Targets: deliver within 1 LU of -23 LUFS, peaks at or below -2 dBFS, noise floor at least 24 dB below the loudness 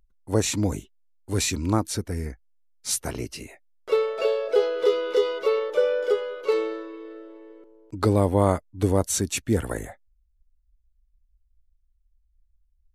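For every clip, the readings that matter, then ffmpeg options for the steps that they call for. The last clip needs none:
loudness -25.0 LUFS; peak level -6.0 dBFS; loudness target -23.0 LUFS
-> -af "volume=1.26"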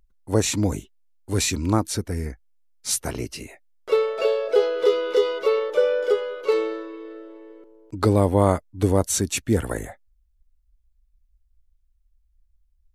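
loudness -23.0 LUFS; peak level -3.5 dBFS; noise floor -65 dBFS

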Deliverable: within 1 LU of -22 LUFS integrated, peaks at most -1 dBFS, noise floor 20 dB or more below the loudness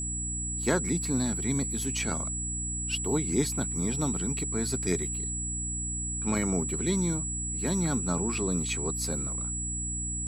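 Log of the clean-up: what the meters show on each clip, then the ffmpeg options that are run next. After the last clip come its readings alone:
hum 60 Hz; highest harmonic 300 Hz; hum level -34 dBFS; steady tone 7.8 kHz; tone level -32 dBFS; loudness -29.0 LUFS; peak level -11.5 dBFS; loudness target -22.0 LUFS
-> -af "bandreject=f=60:t=h:w=6,bandreject=f=120:t=h:w=6,bandreject=f=180:t=h:w=6,bandreject=f=240:t=h:w=6,bandreject=f=300:t=h:w=6"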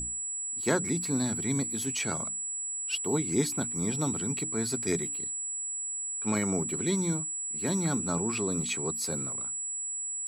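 hum not found; steady tone 7.8 kHz; tone level -32 dBFS
-> -af "bandreject=f=7800:w=30"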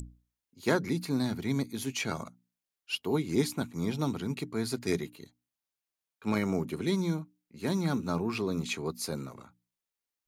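steady tone not found; loudness -32.5 LUFS; peak level -12.5 dBFS; loudness target -22.0 LUFS
-> -af "volume=3.35"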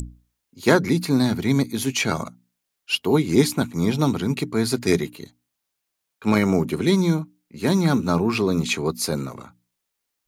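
loudness -22.0 LUFS; peak level -2.0 dBFS; noise floor -80 dBFS

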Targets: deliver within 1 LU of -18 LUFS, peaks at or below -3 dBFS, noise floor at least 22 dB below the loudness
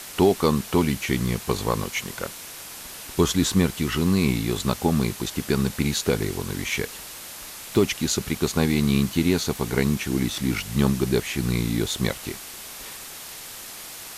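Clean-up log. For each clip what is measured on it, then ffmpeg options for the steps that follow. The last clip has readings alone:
noise floor -39 dBFS; noise floor target -46 dBFS; loudness -24.0 LUFS; peak level -7.5 dBFS; loudness target -18.0 LUFS
-> -af "afftdn=nr=7:nf=-39"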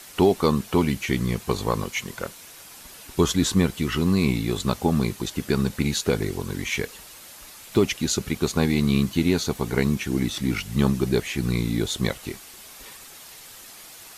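noise floor -45 dBFS; noise floor target -46 dBFS
-> -af "afftdn=nr=6:nf=-45"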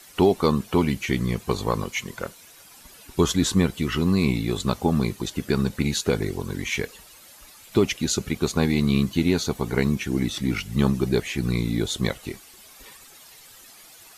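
noise floor -49 dBFS; loudness -24.0 LUFS; peak level -8.0 dBFS; loudness target -18.0 LUFS
-> -af "volume=2,alimiter=limit=0.708:level=0:latency=1"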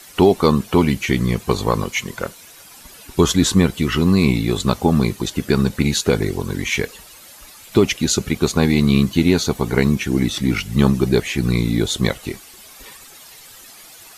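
loudness -18.5 LUFS; peak level -3.0 dBFS; noise floor -43 dBFS

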